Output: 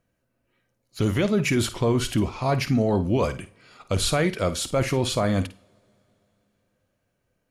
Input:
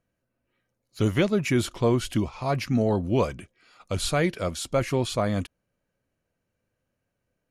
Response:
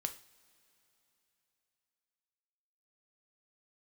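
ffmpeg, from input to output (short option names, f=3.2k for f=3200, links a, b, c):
-filter_complex "[0:a]alimiter=limit=-18.5dB:level=0:latency=1:release=18,asplit=2[a][b];[1:a]atrim=start_sample=2205,adelay=52[c];[b][c]afir=irnorm=-1:irlink=0,volume=-12dB[d];[a][d]amix=inputs=2:normalize=0,volume=4.5dB"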